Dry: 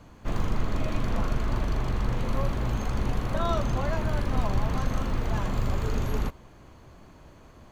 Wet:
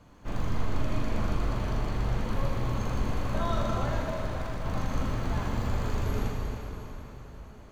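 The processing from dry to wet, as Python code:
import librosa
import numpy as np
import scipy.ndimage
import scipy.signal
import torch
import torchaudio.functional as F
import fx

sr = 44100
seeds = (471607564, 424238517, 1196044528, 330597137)

y = fx.overload_stage(x, sr, gain_db=30.0, at=(4.02, 4.66))
y = fx.rev_plate(y, sr, seeds[0], rt60_s=4.0, hf_ratio=0.85, predelay_ms=0, drr_db=-2.0)
y = y * librosa.db_to_amplitude(-5.5)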